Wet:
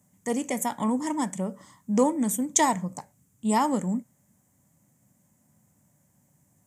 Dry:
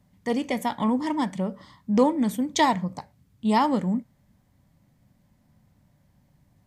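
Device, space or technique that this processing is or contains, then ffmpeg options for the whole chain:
budget condenser microphone: -af "highpass=120,highshelf=f=5600:t=q:w=3:g=9.5,volume=0.794"

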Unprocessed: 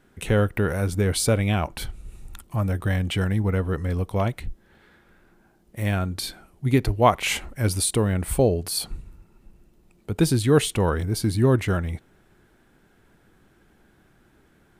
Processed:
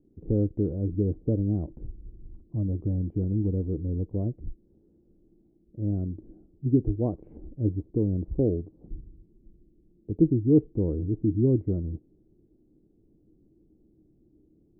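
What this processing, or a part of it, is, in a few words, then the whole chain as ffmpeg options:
under water: -af "lowpass=f=440:w=0.5412,lowpass=f=440:w=1.3066,equalizer=f=310:t=o:w=0.26:g=9.5,volume=0.631"

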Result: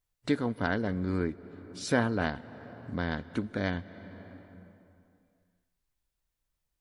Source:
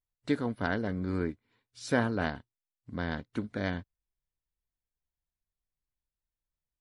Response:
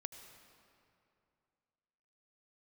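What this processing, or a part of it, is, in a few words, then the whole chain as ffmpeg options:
compressed reverb return: -filter_complex "[0:a]asplit=2[s0][s1];[1:a]atrim=start_sample=2205[s2];[s1][s2]afir=irnorm=-1:irlink=0,acompressor=threshold=0.00398:ratio=12,volume=2.11[s3];[s0][s3]amix=inputs=2:normalize=0"

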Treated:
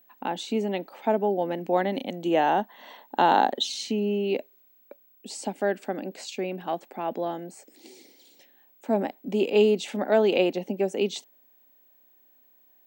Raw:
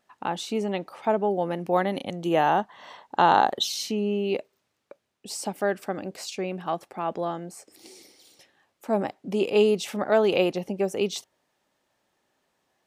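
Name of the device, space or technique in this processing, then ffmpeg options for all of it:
old television with a line whistle: -af "highpass=f=190:w=0.5412,highpass=f=190:w=1.3066,equalizer=f=250:t=q:w=4:g=6,equalizer=f=1200:t=q:w=4:g=-9,equalizer=f=5400:t=q:w=4:g=-7,lowpass=f=8100:w=0.5412,lowpass=f=8100:w=1.3066,aeval=exprs='val(0)+0.00141*sin(2*PI*15734*n/s)':c=same"

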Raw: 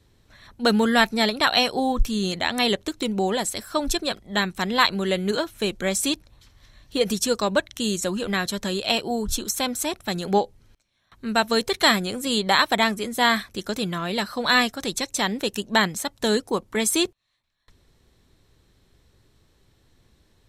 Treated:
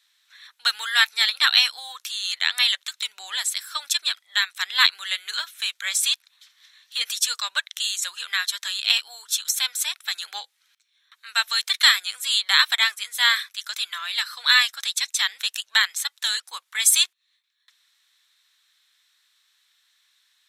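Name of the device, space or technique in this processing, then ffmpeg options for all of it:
headphones lying on a table: -filter_complex "[0:a]highpass=f=1400:w=0.5412,highpass=f=1400:w=1.3066,equalizer=f=3600:t=o:w=0.23:g=6,asettb=1/sr,asplit=3[s0][s1][s2];[s0]atrim=end=16.404[s3];[s1]atrim=start=16.4:end=17.04,asetpts=PTS-STARTPTS,afade=t=in:d=0.004:c=qsin,afade=t=out:st=0.636:d=0.004:c=qsin,adynamicequalizer=threshold=0.0224:dfrequency=5600:dqfactor=0.7:tfrequency=5600:tqfactor=0.7:attack=5:release=100:ratio=0.375:range=2.5:mode=boostabove:tftype=highshelf[s4];[s2]atrim=start=17.036[s5];[s3][s4]acrossfade=d=0.004:c1=hsin:c2=qsin[s6];[s6][s5]acrossfade=d=0.004:c1=qsin:c2=hsin,volume=1.41"

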